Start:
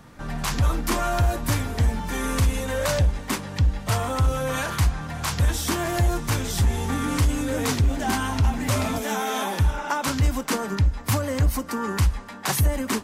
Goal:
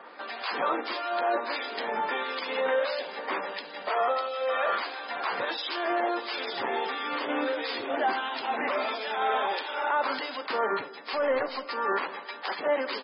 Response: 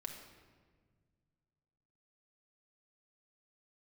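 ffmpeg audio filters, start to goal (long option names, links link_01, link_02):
-filter_complex "[0:a]highpass=frequency=410:width=0.5412,highpass=frequency=410:width=1.3066,asettb=1/sr,asplit=3[link_01][link_02][link_03];[link_01]atrim=end=3.984[link_04];[link_02]atrim=start=3.98:end=4.75,asetpts=PTS-STARTPTS,afade=type=in:duration=0.004:curve=qsin,afade=type=out:start_time=0.766:duration=0.004:curve=qsin,aecho=1:1:1.6:0.49,atrim=end_sample=33957[link_05];[link_03]atrim=start=4.746[link_06];[link_04][link_05]acrossfade=duration=0.004:curve1=hsin:curve2=qsin[link_07];[link_07][link_06]acrossfade=duration=0.004:curve1=qsin:curve2=hsin,alimiter=level_in=0.5dB:limit=-24dB:level=0:latency=1:release=27,volume=-0.5dB,asettb=1/sr,asplit=3[link_08][link_09][link_10];[link_08]atrim=end=10.884[link_11];[link_09]atrim=start=10.88:end=11.6,asetpts=PTS-STARTPTS,afade=type=in:duration=0.004:curve=qsin,afade=type=out:start_time=0.716:duration=0.004:curve=qsin,aeval=exprs='0.0596*(cos(1*acos(clip(val(0)/0.0596,-1,1)))-cos(1*PI/2))+0.00168*(cos(5*acos(clip(val(0)/0.0596,-1,1)))-cos(5*PI/2))+0.000422*(cos(6*acos(clip(val(0)/0.0596,-1,1)))-cos(6*PI/2))+0.00422*(cos(7*acos(clip(val(0)/0.0596,-1,1)))-cos(7*PI/2))':channel_layout=same[link_12];[link_10]atrim=start=11.596[link_13];[link_11][link_12]acrossfade=duration=0.004:curve1=hsin:curve2=qsin[link_14];[link_14][link_13]acrossfade=duration=0.004:curve1=qsin:curve2=hsin,acrossover=split=2300[link_15][link_16];[link_15]aeval=exprs='val(0)*(1-0.7/2+0.7/2*cos(2*PI*1.5*n/s))':channel_layout=same[link_17];[link_16]aeval=exprs='val(0)*(1-0.7/2-0.7/2*cos(2*PI*1.5*n/s))':channel_layout=same[link_18];[link_17][link_18]amix=inputs=2:normalize=0,asplit=2[link_19][link_20];[link_20]adelay=183,lowpass=frequency=1000:poles=1,volume=-20dB,asplit=2[link_21][link_22];[link_22]adelay=183,lowpass=frequency=1000:poles=1,volume=0.45,asplit=2[link_23][link_24];[link_24]adelay=183,lowpass=frequency=1000:poles=1,volume=0.45[link_25];[link_19][link_21][link_23][link_25]amix=inputs=4:normalize=0,asplit=2[link_26][link_27];[1:a]atrim=start_sample=2205,asetrate=38808,aresample=44100,highshelf=frequency=3400:gain=-11[link_28];[link_27][link_28]afir=irnorm=-1:irlink=0,volume=-8.5dB[link_29];[link_26][link_29]amix=inputs=2:normalize=0,aresample=11025,aresample=44100,volume=6.5dB" -ar 24000 -c:a libmp3lame -b:a 16k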